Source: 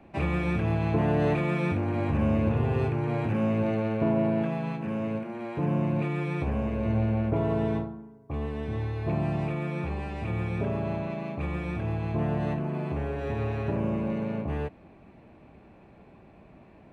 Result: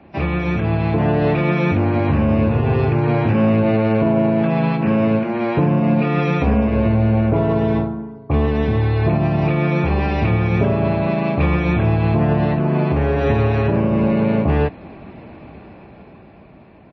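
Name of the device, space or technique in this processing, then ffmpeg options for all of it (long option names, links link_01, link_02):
low-bitrate web radio: -filter_complex "[0:a]highpass=44,asplit=3[link_01][link_02][link_03];[link_01]afade=type=out:start_time=5.79:duration=0.02[link_04];[link_02]aecho=1:1:4.2:0.57,afade=type=in:start_time=5.79:duration=0.02,afade=type=out:start_time=6.66:duration=0.02[link_05];[link_03]afade=type=in:start_time=6.66:duration=0.02[link_06];[link_04][link_05][link_06]amix=inputs=3:normalize=0,dynaudnorm=framelen=290:gausssize=11:maxgain=9dB,alimiter=limit=-15dB:level=0:latency=1:release=286,volume=7.5dB" -ar 22050 -c:a libmp3lame -b:a 24k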